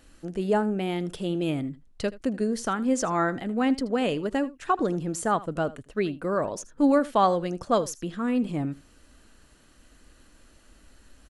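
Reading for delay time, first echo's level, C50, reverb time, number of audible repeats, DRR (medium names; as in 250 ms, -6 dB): 79 ms, -19.0 dB, no reverb, no reverb, 1, no reverb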